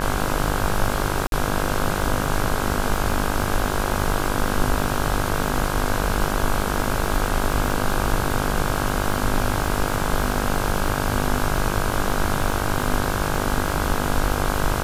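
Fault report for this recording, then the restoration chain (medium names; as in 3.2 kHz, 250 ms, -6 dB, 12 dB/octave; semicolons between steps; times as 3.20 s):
buzz 50 Hz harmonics 33 -26 dBFS
crackle 56 per s -26 dBFS
1.27–1.32 s: dropout 52 ms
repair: de-click; de-hum 50 Hz, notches 33; interpolate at 1.27 s, 52 ms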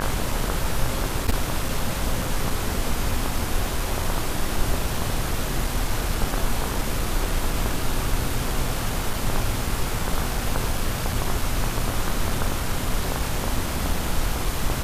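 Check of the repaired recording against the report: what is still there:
nothing left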